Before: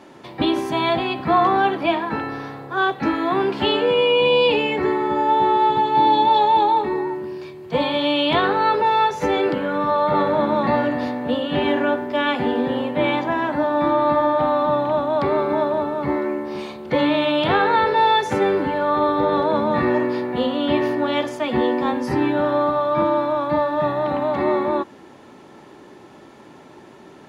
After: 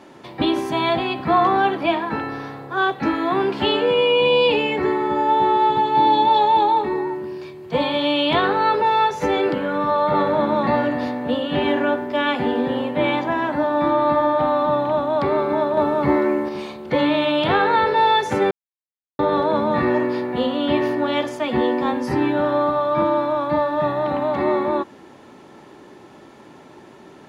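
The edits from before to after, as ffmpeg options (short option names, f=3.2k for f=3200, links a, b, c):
-filter_complex "[0:a]asplit=5[a][b][c][d][e];[a]atrim=end=15.772[f];[b]atrim=start=15.768:end=16.492,asetpts=PTS-STARTPTS,volume=4.5dB[g];[c]atrim=start=16.488:end=18.51,asetpts=PTS-STARTPTS,afade=t=out:st=2.018:d=0.004:c=hsin[h];[d]atrim=start=18.51:end=19.19,asetpts=PTS-STARTPTS,volume=0[i];[e]atrim=start=19.19,asetpts=PTS-STARTPTS,afade=t=in:d=0.004:c=hsin[j];[f][g]acrossfade=d=0.004:c1=hsin:c2=hsin[k];[h][i][j]concat=n=3:v=0:a=1[l];[k][l]acrossfade=d=0.004:c1=hsin:c2=hsin"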